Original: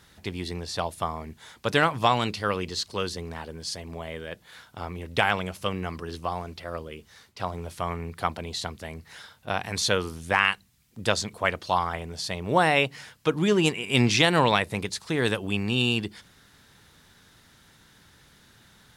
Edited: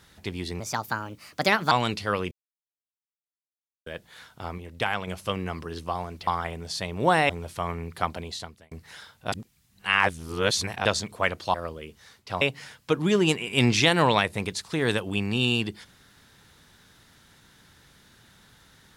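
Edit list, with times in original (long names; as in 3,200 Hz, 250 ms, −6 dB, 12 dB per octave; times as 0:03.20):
0:00.60–0:02.08: play speed 133%
0:02.68–0:04.23: silence
0:04.95–0:05.44: clip gain −4.5 dB
0:06.64–0:07.51: swap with 0:11.76–0:12.78
0:08.40–0:08.93: fade out
0:09.54–0:11.07: reverse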